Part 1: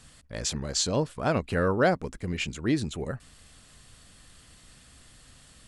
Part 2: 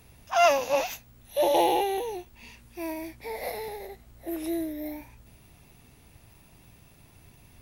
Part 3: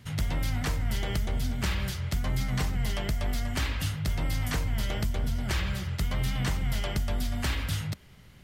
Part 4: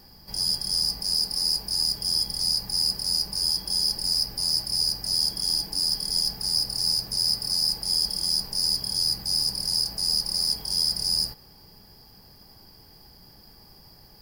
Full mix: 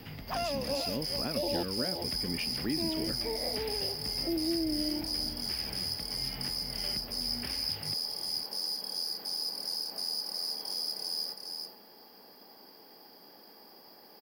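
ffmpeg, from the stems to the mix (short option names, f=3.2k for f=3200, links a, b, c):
-filter_complex "[0:a]volume=-11dB[a];[1:a]volume=0.5dB,asplit=3[b][c][d];[b]atrim=end=1.63,asetpts=PTS-STARTPTS,afade=t=out:st=1.626:d=0.004:c=hsin[e];[c]atrim=start=1.63:end=2.32,asetpts=PTS-STARTPTS,volume=0[f];[d]atrim=start=2.32,asetpts=PTS-STARTPTS,afade=t=in:d=0.004:c=hsin[g];[e][f][g]concat=n=3:v=0:a=1,asplit=2[h][i];[i]volume=-22dB[j];[2:a]acompressor=threshold=-39dB:ratio=3,tremolo=f=1.9:d=0.42,volume=-8dB[k];[3:a]highpass=520,volume=0.5dB,asplit=2[l][m];[m]volume=-11.5dB[n];[a][k]amix=inputs=2:normalize=0,equalizer=f=2.4k:t=o:w=1.4:g=11.5,acompressor=threshold=-37dB:ratio=3,volume=0dB[o];[h][l]amix=inputs=2:normalize=0,acompressor=threshold=-31dB:ratio=2.5,volume=0dB[p];[j][n]amix=inputs=2:normalize=0,aecho=0:1:409:1[q];[o][p][q]amix=inputs=3:normalize=0,equalizer=f=250:t=o:w=1:g=11,equalizer=f=500:t=o:w=1:g=5,equalizer=f=8k:t=o:w=1:g=-12,acrossover=split=270|3000[r][s][t];[s]acompressor=threshold=-36dB:ratio=3[u];[r][u][t]amix=inputs=3:normalize=0"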